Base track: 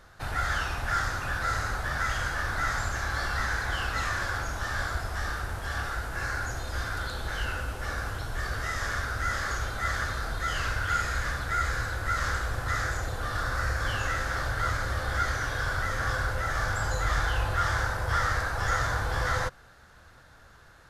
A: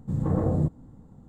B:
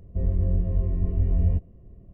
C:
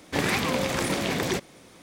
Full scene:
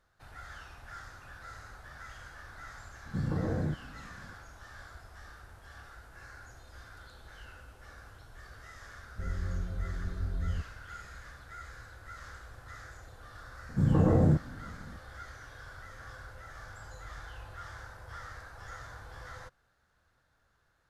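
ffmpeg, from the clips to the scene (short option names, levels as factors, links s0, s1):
-filter_complex "[1:a]asplit=2[s0][s1];[0:a]volume=0.119[s2];[s0]acompressor=threshold=0.0631:ratio=6:attack=3.2:release=140:knee=1:detection=peak[s3];[s1]alimiter=level_in=6.31:limit=0.891:release=50:level=0:latency=1[s4];[s3]atrim=end=1.28,asetpts=PTS-STARTPTS,volume=0.708,afade=t=in:d=0.004:c=hsin,afade=t=out:st=1.276:d=0.004:c=hsin,adelay=3060[s5];[2:a]atrim=end=2.13,asetpts=PTS-STARTPTS,volume=0.266,afade=t=in:d=0.004:c=hsin,afade=t=out:st=2.126:d=0.004:c=hsin,adelay=9030[s6];[s4]atrim=end=1.28,asetpts=PTS-STARTPTS,volume=0.2,afade=t=in:d=0.004:c=hsin,afade=t=out:st=1.276:d=0.004:c=hsin,adelay=13690[s7];[s2][s5][s6][s7]amix=inputs=4:normalize=0"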